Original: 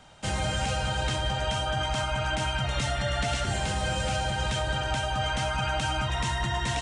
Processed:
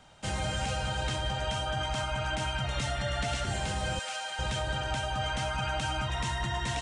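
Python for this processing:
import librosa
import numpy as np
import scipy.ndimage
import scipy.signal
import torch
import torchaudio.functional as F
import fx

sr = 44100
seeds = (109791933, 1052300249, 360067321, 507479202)

y = fx.highpass(x, sr, hz=890.0, slope=12, at=(3.99, 4.39))
y = F.gain(torch.from_numpy(y), -3.5).numpy()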